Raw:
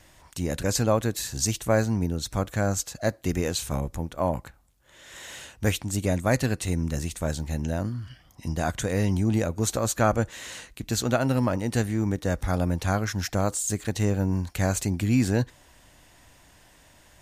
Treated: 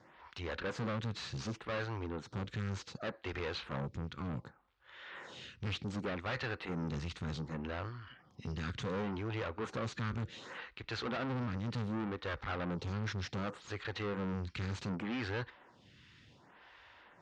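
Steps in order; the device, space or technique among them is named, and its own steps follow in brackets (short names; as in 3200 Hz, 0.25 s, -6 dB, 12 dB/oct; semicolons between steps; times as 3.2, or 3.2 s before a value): vibe pedal into a guitar amplifier (photocell phaser 0.67 Hz; tube stage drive 36 dB, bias 0.55; speaker cabinet 100–4200 Hz, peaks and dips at 290 Hz -5 dB, 640 Hz -8 dB, 1300 Hz +4 dB); gain +3.5 dB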